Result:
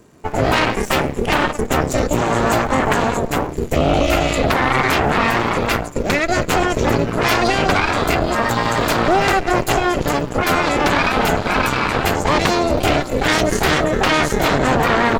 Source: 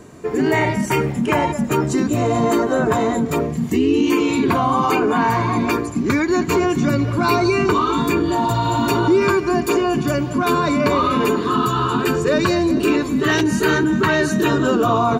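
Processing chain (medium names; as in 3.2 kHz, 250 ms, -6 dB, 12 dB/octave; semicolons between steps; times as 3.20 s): crackle 310 per s -41 dBFS; Chebyshev shaper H 3 -14 dB, 6 -9 dB, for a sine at -3 dBFS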